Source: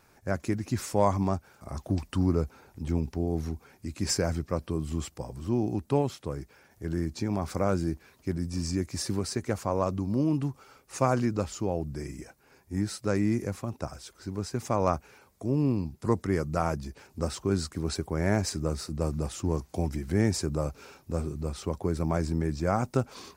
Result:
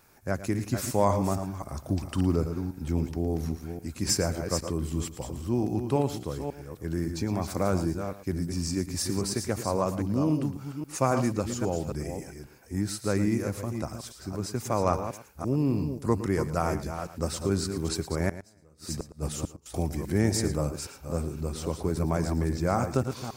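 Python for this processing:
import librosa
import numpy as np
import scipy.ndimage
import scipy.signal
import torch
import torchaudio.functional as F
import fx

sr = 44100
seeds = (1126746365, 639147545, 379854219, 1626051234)

y = fx.reverse_delay(x, sr, ms=271, wet_db=-7.5)
y = fx.high_shelf(y, sr, hz=9800.0, db=10.5)
y = fx.gate_flip(y, sr, shuts_db=-19.0, range_db=-30, at=(18.29, 19.66))
y = y + 10.0 ** (-14.0 / 20.0) * np.pad(y, (int(112 * sr / 1000.0), 0))[:len(y)]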